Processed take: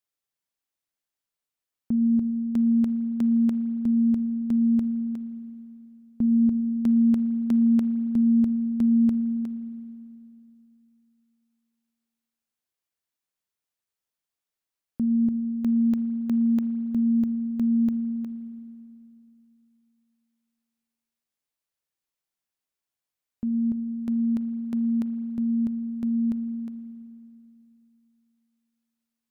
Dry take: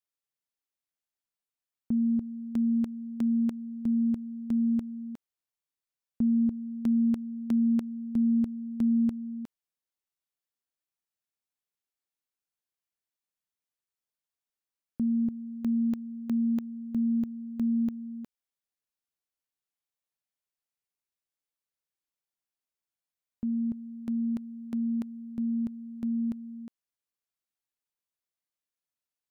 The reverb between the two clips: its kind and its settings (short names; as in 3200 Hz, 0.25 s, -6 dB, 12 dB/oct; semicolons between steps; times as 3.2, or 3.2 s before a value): spring tank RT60 2.8 s, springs 39/54 ms, chirp 20 ms, DRR 11.5 dB; gain +3 dB